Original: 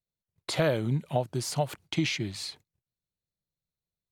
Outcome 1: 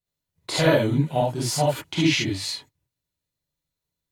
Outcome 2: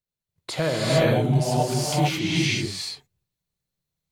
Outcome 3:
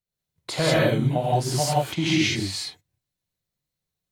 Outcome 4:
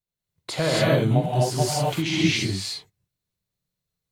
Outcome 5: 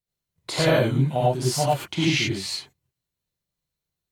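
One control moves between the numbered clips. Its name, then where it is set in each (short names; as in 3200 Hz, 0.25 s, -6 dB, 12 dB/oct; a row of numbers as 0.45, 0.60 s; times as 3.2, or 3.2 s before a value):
non-linear reverb, gate: 90, 470, 210, 300, 130 ms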